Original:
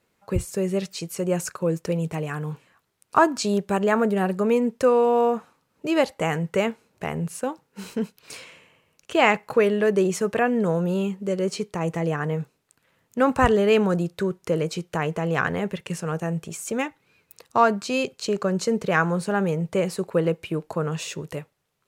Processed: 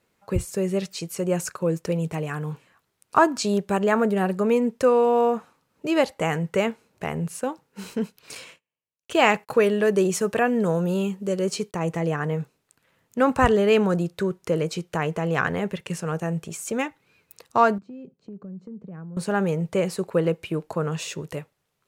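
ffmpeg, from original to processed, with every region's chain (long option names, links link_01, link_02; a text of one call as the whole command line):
ffmpeg -i in.wav -filter_complex "[0:a]asettb=1/sr,asplit=3[link_01][link_02][link_03];[link_01]atrim=end=8.354[link_04];[link_02]atrim=start=8.35:end=11.75,asetpts=PTS-STARTPTS,afade=type=in:duration=0.004:curve=qsin,afade=type=out:start_time=3.396:duration=0.004:curve=qsin,bandreject=frequency=2100:width=20,agate=range=-35dB:threshold=-49dB:ratio=16:release=100:detection=peak,highshelf=frequency=5400:gain=5.5[link_05];[link_03]atrim=start=11.746[link_06];[link_04][link_05]acrossfade=duration=0.004:curve1=hsin:curve2=qsin[link_07];[link_07][link_06]acrossfade=duration=0.004:curve1=qsin:curve2=hsin,asettb=1/sr,asplit=3[link_08][link_09][link_10];[link_08]atrim=end=17.784[link_11];[link_09]atrim=start=17.78:end=19.17,asetpts=PTS-STARTPTS,afade=type=in:duration=0.004:curve=qsin,afade=type=out:start_time=1.386:duration=0.004:curve=qsin,bandpass=frequency=190:width_type=q:width=2.3,acompressor=threshold=-37dB:ratio=4:attack=3.2:release=140:knee=1:detection=peak[link_12];[link_10]atrim=start=19.166[link_13];[link_11][link_12]acrossfade=duration=0.004:curve1=hsin:curve2=qsin[link_14];[link_14][link_13]acrossfade=duration=0.004:curve1=qsin:curve2=hsin" out.wav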